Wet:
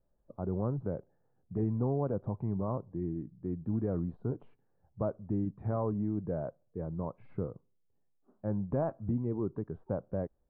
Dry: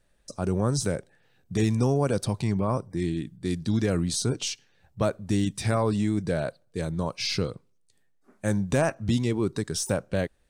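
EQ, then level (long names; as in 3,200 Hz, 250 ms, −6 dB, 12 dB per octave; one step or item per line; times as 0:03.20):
inverse Chebyshev low-pass filter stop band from 6,000 Hz, stop band 80 dB
−7.5 dB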